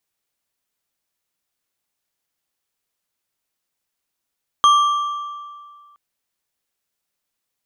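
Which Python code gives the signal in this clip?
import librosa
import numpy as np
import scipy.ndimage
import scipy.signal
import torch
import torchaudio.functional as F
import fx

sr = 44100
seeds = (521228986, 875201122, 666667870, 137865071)

y = fx.strike_metal(sr, length_s=1.32, level_db=-8.0, body='bar', hz=1170.0, decay_s=1.95, tilt_db=10.0, modes=4)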